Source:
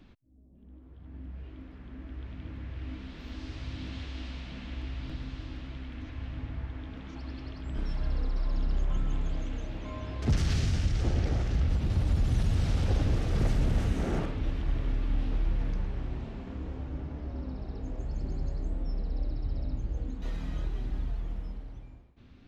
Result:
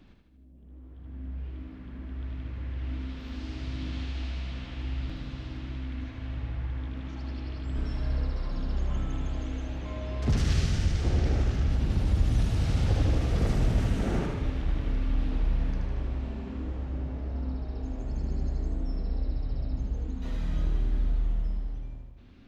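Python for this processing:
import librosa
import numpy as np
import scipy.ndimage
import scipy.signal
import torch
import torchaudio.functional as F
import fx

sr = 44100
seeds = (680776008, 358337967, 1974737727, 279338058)

y = fx.echo_feedback(x, sr, ms=77, feedback_pct=59, wet_db=-5.0)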